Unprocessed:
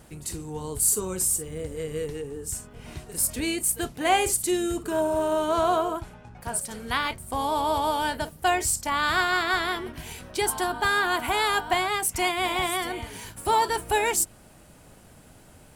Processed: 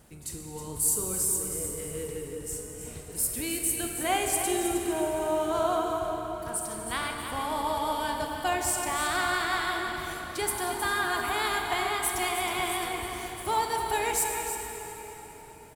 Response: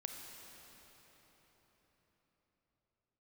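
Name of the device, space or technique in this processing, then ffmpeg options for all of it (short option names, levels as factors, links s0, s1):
cave: -filter_complex "[0:a]highshelf=f=9600:g=5.5,aecho=1:1:315:0.335[s0];[1:a]atrim=start_sample=2205[s1];[s0][s1]afir=irnorm=-1:irlink=0,volume=0.75"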